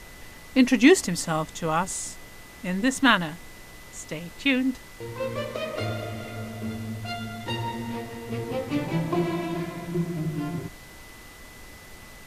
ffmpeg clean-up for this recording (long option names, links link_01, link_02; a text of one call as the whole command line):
ffmpeg -i in.wav -af "bandreject=frequency=2000:width=30,afftdn=noise_reduction=27:noise_floor=-45" out.wav